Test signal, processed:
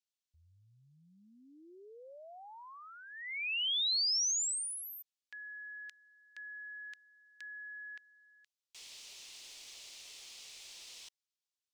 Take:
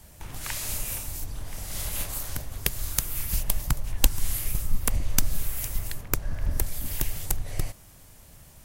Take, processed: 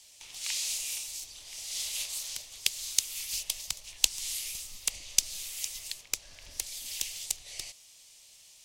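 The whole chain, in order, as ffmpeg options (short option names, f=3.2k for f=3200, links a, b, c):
-filter_complex "[0:a]acrossover=split=370 7400:gain=0.178 1 0.0794[a][b][c];[a][b][c]amix=inputs=3:normalize=0,aexciter=amount=11.8:drive=1.5:freq=2.3k,aeval=exprs='5.01*(cos(1*acos(clip(val(0)/5.01,-1,1)))-cos(1*PI/2))+0.316*(cos(2*acos(clip(val(0)/5.01,-1,1)))-cos(2*PI/2))':c=same,volume=-14dB"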